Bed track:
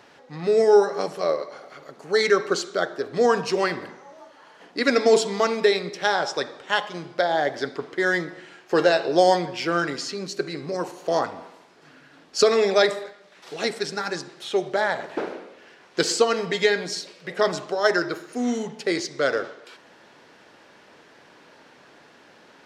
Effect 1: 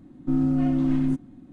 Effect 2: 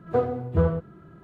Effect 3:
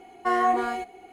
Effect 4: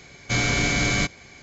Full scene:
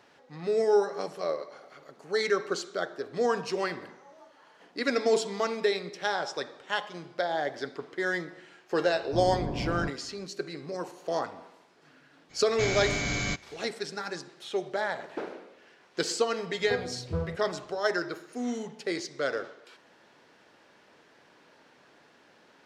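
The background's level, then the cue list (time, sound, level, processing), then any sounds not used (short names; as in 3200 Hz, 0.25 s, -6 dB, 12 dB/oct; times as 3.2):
bed track -7.5 dB
8.83 add 4 -6.5 dB + elliptic low-pass 1000 Hz
12.29 add 4 -8 dB, fades 0.02 s
16.56 add 2 -10 dB
not used: 1, 3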